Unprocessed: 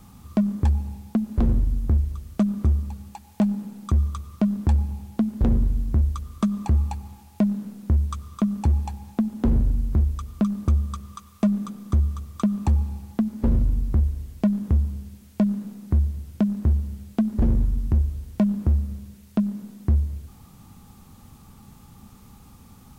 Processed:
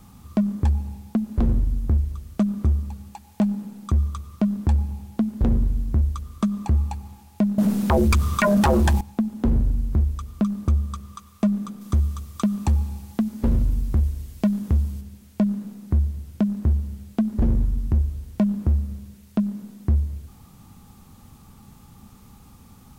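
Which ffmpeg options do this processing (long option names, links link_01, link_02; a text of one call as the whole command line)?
ffmpeg -i in.wav -filter_complex "[0:a]asettb=1/sr,asplit=3[link_01][link_02][link_03];[link_01]atrim=end=7.584[link_04];[link_02]atrim=start=7.58:end=9.01,asetpts=PTS-STARTPTS,afade=type=in:duration=0.004:curve=qsin,afade=type=out:start_time=1.426:duration=0.004:curve=qsin,aeval=exprs='0.2*sin(PI/2*5.01*val(0)/0.2)':channel_layout=same[link_05];[link_03]atrim=start=9.006[link_06];[link_04][link_05]acrossfade=duration=0.004:curve1=hsin:curve2=qsin[link_07];[link_07][link_06]acrossfade=duration=0.004:curve1=qsin:curve2=hsin,asettb=1/sr,asplit=3[link_08][link_09][link_10];[link_08]atrim=end=11.814[link_11];[link_09]atrim=start=11.81:end=15.01,asetpts=PTS-STARTPTS,afade=type=in:duration=0.004:curve=qsin,afade=type=out:start_time=3.196:duration=0.004:curve=qsin,highshelf=frequency=2200:gain=6.5[link_12];[link_10]atrim=start=15.006[link_13];[link_11][link_12]acrossfade=duration=0.004:curve1=hsin:curve2=qsin[link_14];[link_14][link_13]acrossfade=duration=0.004:curve1=qsin:curve2=hsin" out.wav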